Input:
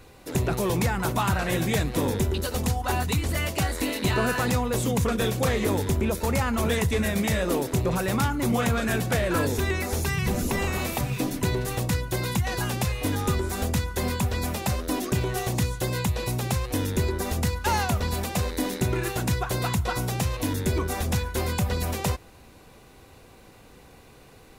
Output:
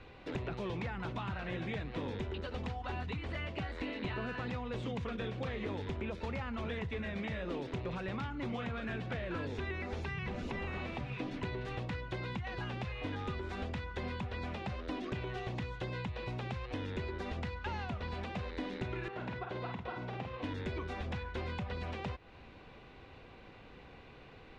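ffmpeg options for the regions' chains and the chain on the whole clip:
ffmpeg -i in.wav -filter_complex "[0:a]asettb=1/sr,asplit=3[link_01][link_02][link_03];[link_01]atrim=end=19.084[link_04];[link_02]atrim=start=19.08:end=20.44,asetpts=PTS-STARTPTS,afade=type=in:duration=0.004:curve=qsin,afade=type=out:start_time=1.356:duration=0.004:curve=qsin,bandpass=frequency=770:width_type=q:width=0.64,asplit=2[link_05][link_06];[link_06]adelay=48,volume=-5dB[link_07];[link_05][link_07]amix=inputs=2:normalize=0,atrim=end_sample=59976[link_08];[link_03]atrim=start=20.436[link_09];[link_04][link_08]acrossfade=duration=0.004:curve1=hsin:curve2=qsin[link_10];[link_10][link_09]acrossfade=duration=0.004:curve1=qsin:curve2=hsin,lowpass=frequency=3100:width=0.5412,lowpass=frequency=3100:width=1.3066,aemphasis=mode=production:type=75fm,acrossover=split=390|2400[link_11][link_12][link_13];[link_11]acompressor=threshold=-37dB:ratio=4[link_14];[link_12]acompressor=threshold=-41dB:ratio=4[link_15];[link_13]acompressor=threshold=-51dB:ratio=4[link_16];[link_14][link_15][link_16]amix=inputs=3:normalize=0,volume=-3dB" out.wav

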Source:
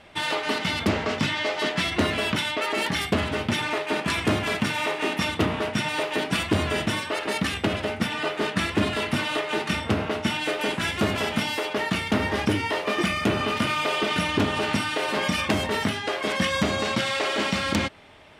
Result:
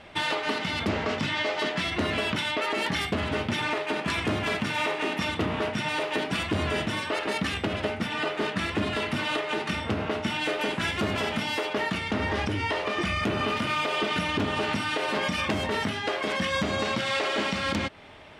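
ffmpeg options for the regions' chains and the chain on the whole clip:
ffmpeg -i in.wav -filter_complex "[0:a]asettb=1/sr,asplit=3[link_01][link_02][link_03];[link_01]atrim=end=11.984[link_04];[link_02]atrim=start=11.98:end=13.23,asetpts=PTS-STARTPTS,afade=type=in:duration=0.004:curve=qsin,afade=type=out:start_time=1.246:duration=0.004:curve=qsin,lowpass=9900,asubboost=boost=9.5:cutoff=100,acompressor=threshold=-25dB:ratio=2.5:attack=3.2:release=140:knee=1:detection=peak[link_05];[link_03]atrim=start=13.226[link_06];[link_04][link_05]acrossfade=duration=0.004:curve1=hsin:curve2=qsin[link_07];[link_07][link_06]acrossfade=duration=0.004:curve1=qsin:curve2=hsin,highshelf=frequency=9100:gain=-10,alimiter=limit=-20dB:level=0:latency=1:release=267,volume=2.5dB" out.wav

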